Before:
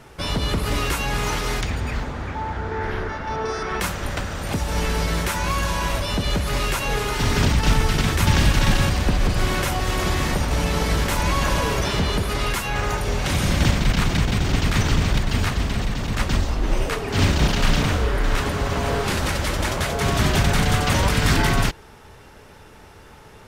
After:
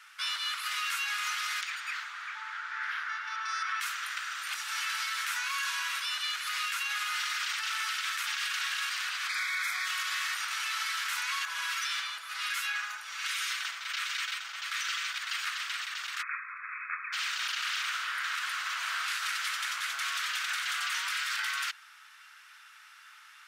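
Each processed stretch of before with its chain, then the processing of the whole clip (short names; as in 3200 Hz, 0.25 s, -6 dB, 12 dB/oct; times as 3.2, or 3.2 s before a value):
9.29–9.86 Butterworth band-stop 2800 Hz, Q 2.7 + bell 2400 Hz +12 dB 0.64 oct
11.45–15.16 comb 6 ms, depth 46% + harmonic tremolo 1.3 Hz, crossover 930 Hz
16.21–17.12 brick-wall FIR band-pass 1000–2600 Hz + crackle 160/s -61 dBFS
whole clip: Chebyshev high-pass 1300 Hz, order 4; high shelf 4700 Hz -5 dB; limiter -23.5 dBFS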